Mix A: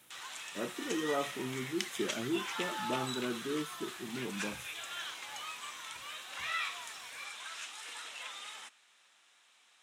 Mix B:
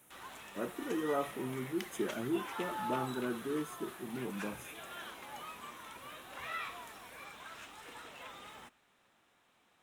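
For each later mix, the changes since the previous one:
background: remove frequency weighting ITU-R 468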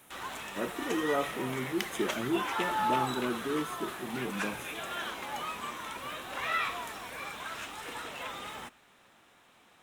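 speech +3.5 dB; background +9.5 dB

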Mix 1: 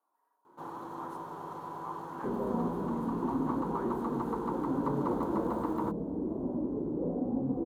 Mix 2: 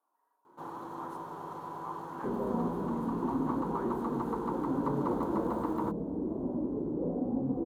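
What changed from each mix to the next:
no change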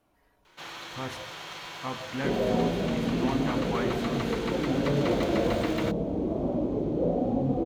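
speech: remove high-pass 1.4 kHz 12 dB/octave; second sound +11.0 dB; master: remove FFT filter 110 Hz 0 dB, 260 Hz +8 dB, 430 Hz +5 dB, 650 Hz -3 dB, 970 Hz +7 dB, 2.3 kHz -28 dB, 5.7 kHz -22 dB, 10 kHz -9 dB

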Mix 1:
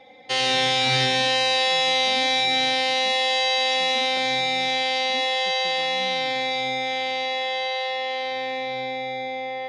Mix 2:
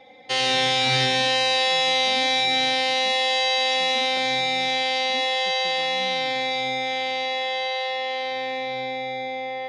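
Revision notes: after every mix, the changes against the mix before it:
no change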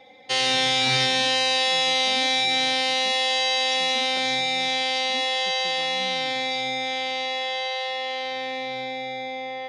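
background: send -6.5 dB; master: add treble shelf 4.3 kHz +5.5 dB

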